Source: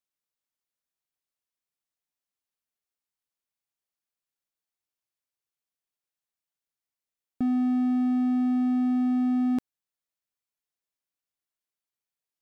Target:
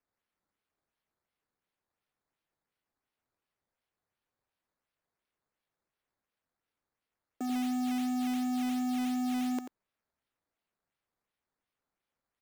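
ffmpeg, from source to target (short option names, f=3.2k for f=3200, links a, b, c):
-af "highpass=f=330:w=0.5412,highpass=f=330:w=1.3066,acrusher=samples=11:mix=1:aa=0.000001:lfo=1:lforange=11:lforate=2.8,aecho=1:1:88:0.335"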